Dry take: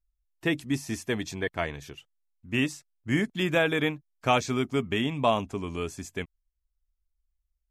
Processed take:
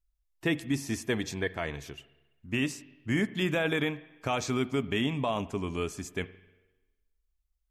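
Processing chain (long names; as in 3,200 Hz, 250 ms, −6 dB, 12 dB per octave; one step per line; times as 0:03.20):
brickwall limiter −18.5 dBFS, peak gain reduction 8.5 dB
spring reverb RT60 1.1 s, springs 43/54 ms, chirp 55 ms, DRR 16.5 dB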